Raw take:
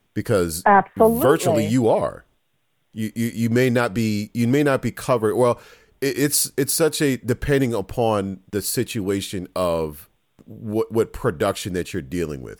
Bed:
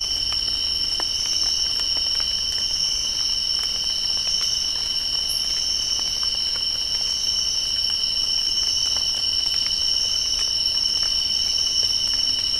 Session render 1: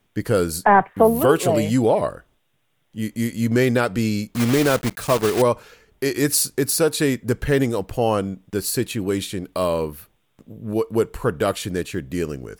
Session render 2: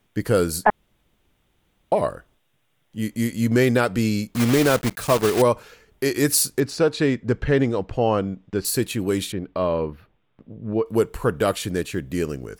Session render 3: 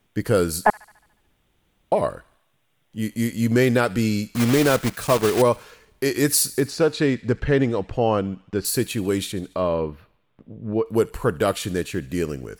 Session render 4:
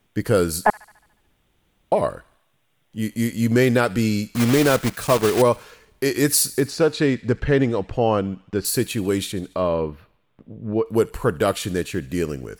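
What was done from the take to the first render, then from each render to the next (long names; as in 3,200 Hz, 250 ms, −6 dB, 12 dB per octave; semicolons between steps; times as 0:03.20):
0:04.35–0:05.43: one scale factor per block 3 bits
0:00.70–0:01.92: fill with room tone; 0:06.60–0:08.65: high-frequency loss of the air 140 metres; 0:09.32–0:10.86: high-frequency loss of the air 320 metres
delay with a high-pass on its return 72 ms, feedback 58%, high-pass 1,700 Hz, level −18 dB
level +1 dB; brickwall limiter −3 dBFS, peak gain reduction 1.5 dB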